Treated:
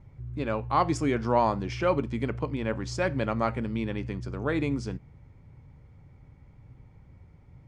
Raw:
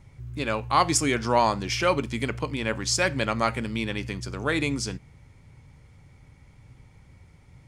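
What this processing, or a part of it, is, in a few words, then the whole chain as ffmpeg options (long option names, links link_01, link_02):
through cloth: -af "lowpass=8100,highshelf=frequency=2000:gain=-16"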